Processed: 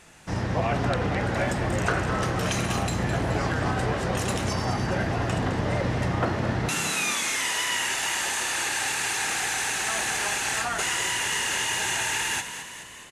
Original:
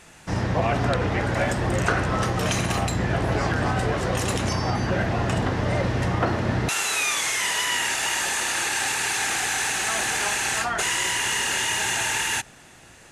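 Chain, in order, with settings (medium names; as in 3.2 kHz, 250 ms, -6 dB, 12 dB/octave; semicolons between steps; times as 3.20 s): frequency-shifting echo 211 ms, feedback 61%, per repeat +37 Hz, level -10 dB; trim -3 dB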